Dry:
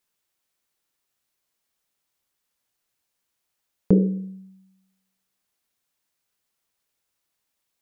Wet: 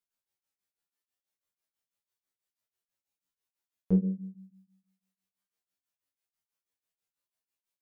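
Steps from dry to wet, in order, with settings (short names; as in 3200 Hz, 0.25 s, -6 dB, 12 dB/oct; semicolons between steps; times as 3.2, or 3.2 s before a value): resonator 93 Hz, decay 0.36 s, harmonics all, mix 100%; beating tremolo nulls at 6.1 Hz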